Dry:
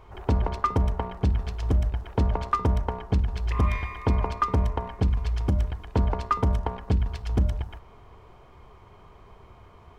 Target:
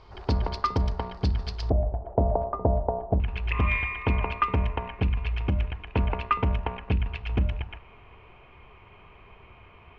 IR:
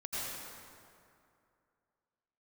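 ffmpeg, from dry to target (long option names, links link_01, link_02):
-af "asetnsamples=nb_out_samples=441:pad=0,asendcmd='1.7 lowpass f 660;3.2 lowpass f 2600',lowpass=frequency=4700:width_type=q:width=5.8,volume=-2dB"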